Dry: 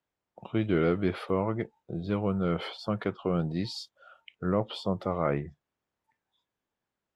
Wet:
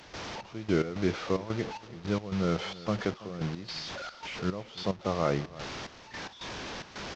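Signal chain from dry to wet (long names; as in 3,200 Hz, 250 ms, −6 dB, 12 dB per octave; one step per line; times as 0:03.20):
linear delta modulator 32 kbit/s, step −33 dBFS
gate pattern ".xx..x.xxx" 110 BPM −12 dB
single-tap delay 330 ms −18.5 dB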